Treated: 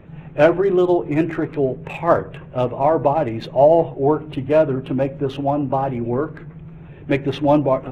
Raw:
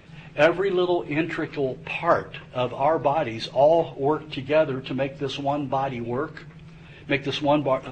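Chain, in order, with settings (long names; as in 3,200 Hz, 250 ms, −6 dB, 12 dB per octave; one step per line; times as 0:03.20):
adaptive Wiener filter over 9 samples
tilt shelving filter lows +6 dB, about 1,300 Hz
level +1.5 dB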